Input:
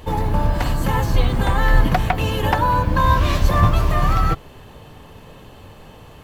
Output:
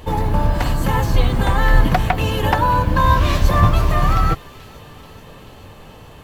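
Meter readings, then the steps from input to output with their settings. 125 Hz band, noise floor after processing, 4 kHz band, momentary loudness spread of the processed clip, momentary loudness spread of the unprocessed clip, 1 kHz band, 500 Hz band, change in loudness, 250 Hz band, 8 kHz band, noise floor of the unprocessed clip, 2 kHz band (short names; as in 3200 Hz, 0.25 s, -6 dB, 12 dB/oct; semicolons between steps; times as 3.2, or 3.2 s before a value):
+1.5 dB, -41 dBFS, +1.5 dB, 5 LU, 5 LU, +1.5 dB, +1.5 dB, +1.5 dB, +1.5 dB, +1.5 dB, -43 dBFS, +1.5 dB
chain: thin delay 0.434 s, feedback 69%, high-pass 2400 Hz, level -17 dB; gain +1.5 dB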